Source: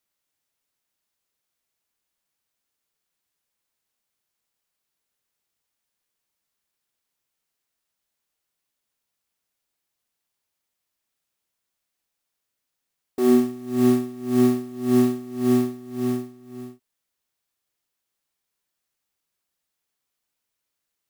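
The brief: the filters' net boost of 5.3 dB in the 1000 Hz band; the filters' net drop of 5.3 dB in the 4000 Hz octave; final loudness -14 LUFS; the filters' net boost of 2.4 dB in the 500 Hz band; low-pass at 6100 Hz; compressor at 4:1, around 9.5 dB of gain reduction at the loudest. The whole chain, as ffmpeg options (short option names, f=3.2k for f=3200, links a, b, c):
-af "lowpass=6.1k,equalizer=f=500:t=o:g=3,equalizer=f=1k:t=o:g=6.5,equalizer=f=4k:t=o:g=-6.5,acompressor=threshold=-23dB:ratio=4,volume=14.5dB"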